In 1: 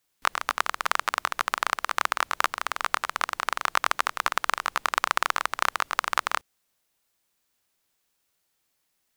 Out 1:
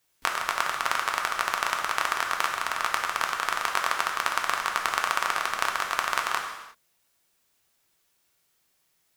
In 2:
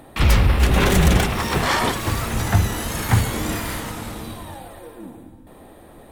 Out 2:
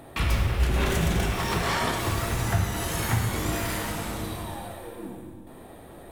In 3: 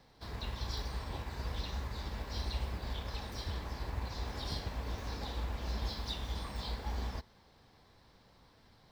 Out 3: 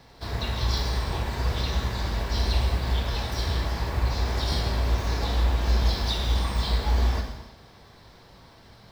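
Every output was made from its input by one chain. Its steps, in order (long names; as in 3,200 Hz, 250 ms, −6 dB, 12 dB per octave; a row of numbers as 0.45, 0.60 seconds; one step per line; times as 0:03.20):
downward compressor 2.5 to 1, threshold −25 dBFS
reverb whose tail is shaped and stops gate 380 ms falling, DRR 1 dB
loudness normalisation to −27 LKFS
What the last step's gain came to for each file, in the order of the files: +2.0, −2.5, +10.0 decibels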